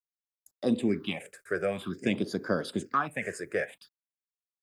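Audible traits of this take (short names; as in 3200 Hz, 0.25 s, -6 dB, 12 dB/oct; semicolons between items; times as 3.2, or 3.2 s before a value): a quantiser's noise floor 12-bit, dither none; phasing stages 6, 0.51 Hz, lowest notch 220–2700 Hz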